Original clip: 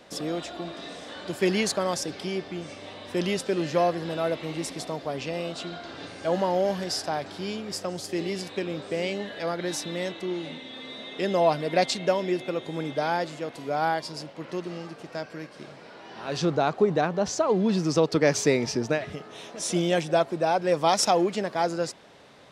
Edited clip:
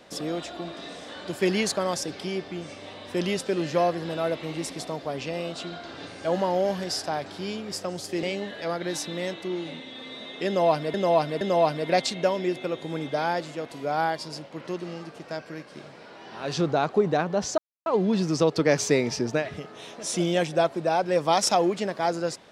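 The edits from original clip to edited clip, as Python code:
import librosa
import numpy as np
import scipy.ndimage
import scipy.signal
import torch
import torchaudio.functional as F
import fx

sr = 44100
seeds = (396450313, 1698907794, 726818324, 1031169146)

y = fx.edit(x, sr, fx.cut(start_s=8.23, length_s=0.78),
    fx.repeat(start_s=11.25, length_s=0.47, count=3),
    fx.insert_silence(at_s=17.42, length_s=0.28), tone=tone)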